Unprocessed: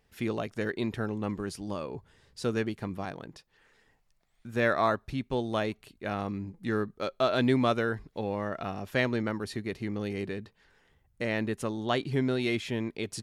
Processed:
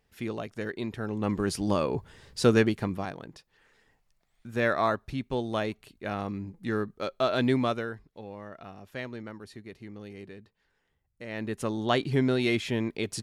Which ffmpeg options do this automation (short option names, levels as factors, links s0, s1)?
-af "volume=12.6,afade=t=in:st=1.01:d=0.64:silence=0.266073,afade=t=out:st=2.49:d=0.65:silence=0.354813,afade=t=out:st=7.54:d=0.48:silence=0.316228,afade=t=in:st=11.26:d=0.49:silence=0.223872"